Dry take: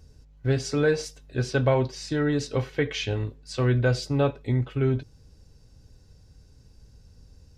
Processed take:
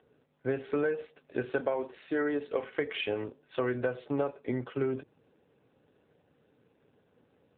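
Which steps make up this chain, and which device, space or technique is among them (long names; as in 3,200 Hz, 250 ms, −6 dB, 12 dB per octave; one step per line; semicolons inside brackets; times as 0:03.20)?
0:01.60–0:02.63: high-pass filter 220 Hz 12 dB per octave
0:03.21–0:04.70: noise gate with hold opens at −46 dBFS
voicemail (band-pass filter 340–2,600 Hz; downward compressor 12 to 1, threshold −29 dBFS, peak gain reduction 11.5 dB; level +3.5 dB; AMR narrowband 7.4 kbit/s 8,000 Hz)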